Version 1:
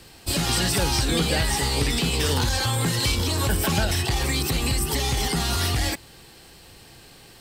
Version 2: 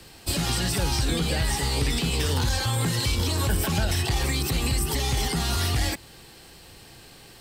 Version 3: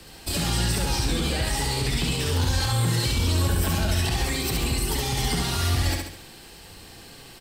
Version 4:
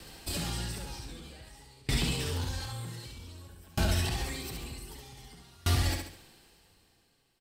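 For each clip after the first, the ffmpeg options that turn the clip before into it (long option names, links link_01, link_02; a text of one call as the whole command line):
ffmpeg -i in.wav -filter_complex "[0:a]acrossover=split=170[link_01][link_02];[link_02]acompressor=threshold=-25dB:ratio=6[link_03];[link_01][link_03]amix=inputs=2:normalize=0" out.wav
ffmpeg -i in.wav -filter_complex "[0:a]flanger=delay=4:depth=5.8:regen=-80:speed=0.29:shape=sinusoidal,alimiter=limit=-23.5dB:level=0:latency=1,asplit=2[link_01][link_02];[link_02]aecho=0:1:69|138|207|276|345|414:0.668|0.307|0.141|0.0651|0.0299|0.0138[link_03];[link_01][link_03]amix=inputs=2:normalize=0,volume=5.5dB" out.wav
ffmpeg -i in.wav -af "aeval=exprs='val(0)*pow(10,-30*if(lt(mod(0.53*n/s,1),2*abs(0.53)/1000),1-mod(0.53*n/s,1)/(2*abs(0.53)/1000),(mod(0.53*n/s,1)-2*abs(0.53)/1000)/(1-2*abs(0.53)/1000))/20)':channel_layout=same,volume=-2dB" out.wav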